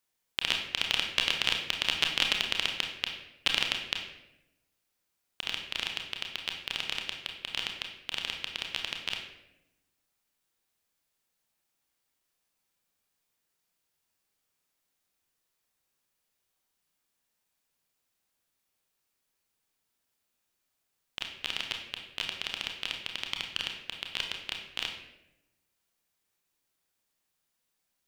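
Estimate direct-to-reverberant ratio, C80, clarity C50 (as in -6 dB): 2.0 dB, 8.0 dB, 5.5 dB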